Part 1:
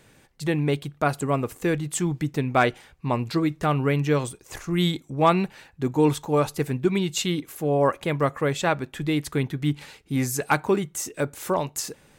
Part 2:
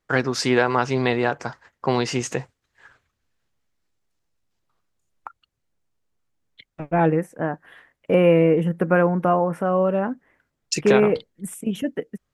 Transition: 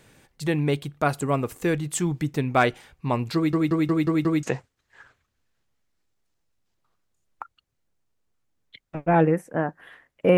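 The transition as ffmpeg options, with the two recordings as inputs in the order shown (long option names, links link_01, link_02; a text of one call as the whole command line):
ffmpeg -i cue0.wav -i cue1.wav -filter_complex "[0:a]apad=whole_dur=10.37,atrim=end=10.37,asplit=6[link_01][link_02][link_03][link_04][link_05][link_06];[link_01]atrim=end=3.532[link_07];[link_02]atrim=start=3.348:end=3.532[link_08];[link_03]atrim=start=3.348:end=3.532[link_09];[link_04]atrim=start=3.348:end=3.532[link_10];[link_05]atrim=start=3.348:end=3.532[link_11];[link_06]atrim=start=3.348:end=3.532[link_12];[1:a]atrim=start=2.278:end=8.22[link_13];[link_07][link_08]acrossfade=duration=0.004:curve1=hsin:curve2=hsin[link_14];[link_14][link_09]acrossfade=duration=0.004:curve1=hsin:curve2=hsin[link_15];[link_15][link_10]acrossfade=duration=0.004:curve1=hsin:curve2=hsin[link_16];[link_16][link_11]acrossfade=duration=0.004:curve1=hsin:curve2=hsin[link_17];[link_17][link_12]acrossfade=duration=0.004:curve1=hsin:curve2=hsin[link_18];[link_18][link_13]acrossfade=duration=0.004:curve1=hsin:curve2=hsin" out.wav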